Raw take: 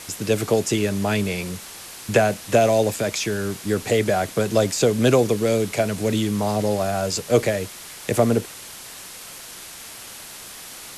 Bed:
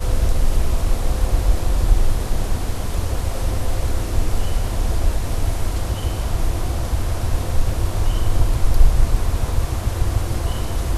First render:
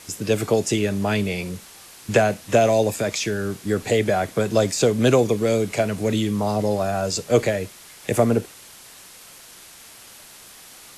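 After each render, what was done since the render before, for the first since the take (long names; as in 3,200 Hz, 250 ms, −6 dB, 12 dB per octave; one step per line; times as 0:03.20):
noise reduction from a noise print 6 dB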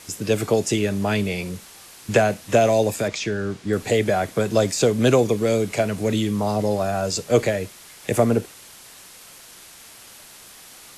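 0:03.08–0:03.73: high-frequency loss of the air 73 metres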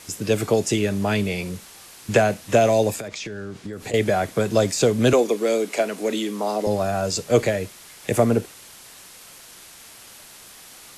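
0:03.00–0:03.94: downward compressor 10 to 1, threshold −28 dBFS
0:05.13–0:06.67: high-pass filter 250 Hz 24 dB per octave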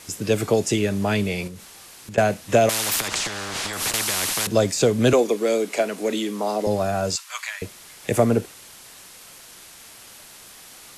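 0:01.47–0:02.18: downward compressor, threshold −34 dBFS
0:02.69–0:04.47: every bin compressed towards the loudest bin 10 to 1
0:07.16–0:07.62: elliptic high-pass filter 1,000 Hz, stop band 60 dB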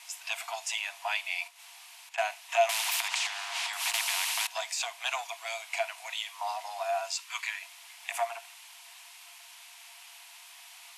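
soft clipping −9.5 dBFS, distortion −19 dB
Chebyshev high-pass with heavy ripple 670 Hz, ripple 9 dB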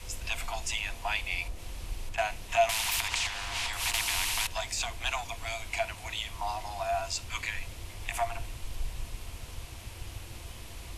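mix in bed −22.5 dB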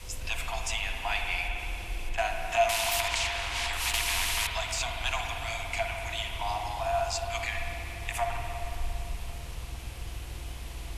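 spring reverb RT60 3.3 s, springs 49/56 ms, chirp 50 ms, DRR 2 dB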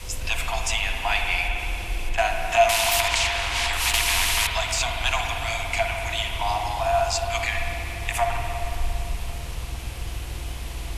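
level +7 dB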